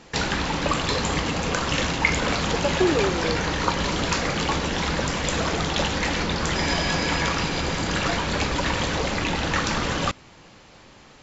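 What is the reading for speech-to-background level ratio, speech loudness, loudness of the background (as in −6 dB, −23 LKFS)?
−2.5 dB, −26.5 LKFS, −24.0 LKFS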